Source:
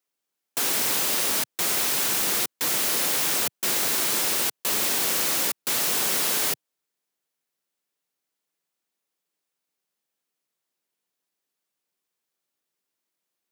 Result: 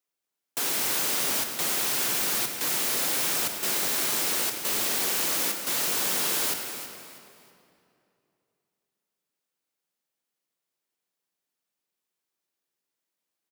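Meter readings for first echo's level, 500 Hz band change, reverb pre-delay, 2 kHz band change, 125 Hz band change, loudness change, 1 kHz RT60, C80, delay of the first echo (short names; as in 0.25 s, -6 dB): -11.5 dB, -2.0 dB, 29 ms, -2.0 dB, -2.0 dB, -2.5 dB, 2.6 s, 5.5 dB, 0.322 s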